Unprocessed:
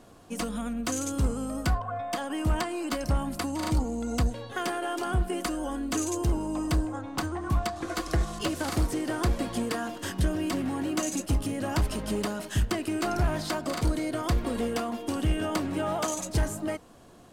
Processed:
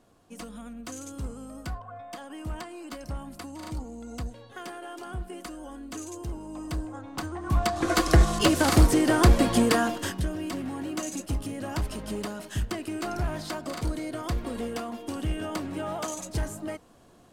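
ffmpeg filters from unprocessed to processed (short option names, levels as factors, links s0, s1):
-af "volume=2.66,afade=t=in:st=6.41:d=1.03:silence=0.446684,afade=t=in:st=7.44:d=0.47:silence=0.298538,afade=t=out:st=9.79:d=0.43:silence=0.251189"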